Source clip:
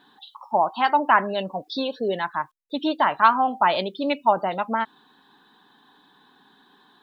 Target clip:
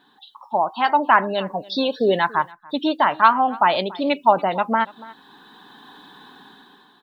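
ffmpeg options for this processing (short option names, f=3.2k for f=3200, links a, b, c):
-filter_complex "[0:a]asplit=2[a][b];[b]aecho=0:1:285:0.0794[c];[a][c]amix=inputs=2:normalize=0,dynaudnorm=f=120:g=13:m=13dB,volume=-1dB"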